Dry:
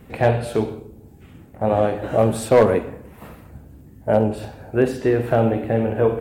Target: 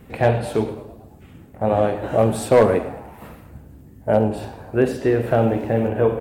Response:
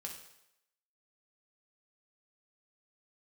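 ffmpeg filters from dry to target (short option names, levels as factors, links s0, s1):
-filter_complex "[0:a]asettb=1/sr,asplit=3[s0][s1][s2];[s0]atrim=end=5.394[s3];[s1]atrim=start=5.39:end=5.88,asetpts=PTS-STARTPTS,afade=t=in:d=0.004:c=qsin,afade=t=out:st=0.486:d=0.004:c=qsin,aeval=exprs='val(0)*gte(abs(val(0)),0.00668)':c=same[s4];[s2]atrim=start=5.876[s5];[s3][s4]acrossfade=d=0.004:c1=hsin:c2=qsin[s6];[s6][s5]acrossfade=d=0.004:c1=qsin:c2=hsin,asplit=6[s7][s8][s9][s10][s11][s12];[s8]adelay=109,afreqshift=83,volume=0.112[s13];[s9]adelay=218,afreqshift=166,volume=0.0638[s14];[s10]adelay=327,afreqshift=249,volume=0.0363[s15];[s11]adelay=436,afreqshift=332,volume=0.0209[s16];[s12]adelay=545,afreqshift=415,volume=0.0119[s17];[s7][s13][s14][s15][s16][s17]amix=inputs=6:normalize=0"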